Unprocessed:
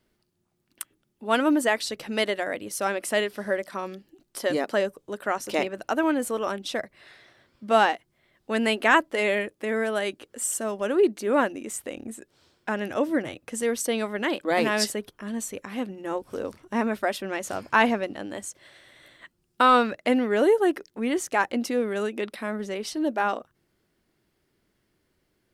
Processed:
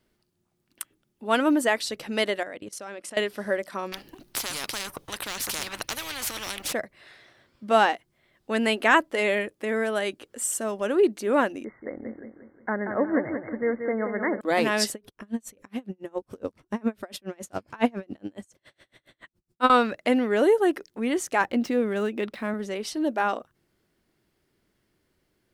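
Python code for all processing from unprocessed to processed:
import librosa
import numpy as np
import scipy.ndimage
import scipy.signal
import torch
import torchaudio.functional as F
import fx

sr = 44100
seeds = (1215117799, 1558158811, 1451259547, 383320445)

y = fx.chain(x, sr, fx.lowpass(hz=8500.0, slope=12),
    fx.level_steps(step_db=19), at=(2.43, 3.17))
y = fx.chain(y, sr, fx.peak_eq(hz=7500.0, db=-7.5, octaves=0.37),
    fx.leveller(passes=1),
    fx.spectral_comp(ratio=10.0), at=(3.92, 6.73))
y = fx.chain(y, sr, fx.brickwall_lowpass(high_hz=2200.0),
    fx.echo_feedback(ms=181, feedback_pct=44, wet_db=-7), at=(11.64, 14.41))
y = fx.chain(y, sr, fx.low_shelf(hz=430.0, db=7.0),
    fx.tremolo_db(hz=7.2, depth_db=34), at=(14.93, 19.7))
y = fx.chain(y, sr, fx.median_filter(points=5),
    fx.bass_treble(bass_db=5, treble_db=-2), at=(21.41, 22.54))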